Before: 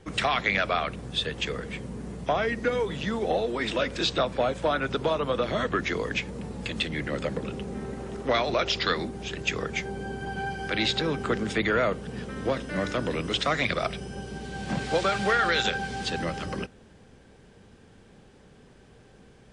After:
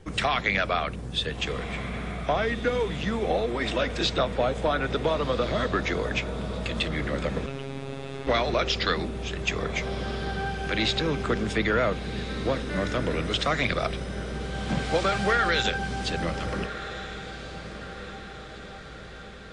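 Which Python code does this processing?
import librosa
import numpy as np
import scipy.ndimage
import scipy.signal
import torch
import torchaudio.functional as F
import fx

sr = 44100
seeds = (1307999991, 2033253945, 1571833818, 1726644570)

p1 = fx.low_shelf(x, sr, hz=68.0, db=9.5)
p2 = p1 + fx.echo_diffused(p1, sr, ms=1434, feedback_pct=57, wet_db=-12.0, dry=0)
y = fx.robotise(p2, sr, hz=136.0, at=(7.46, 8.27))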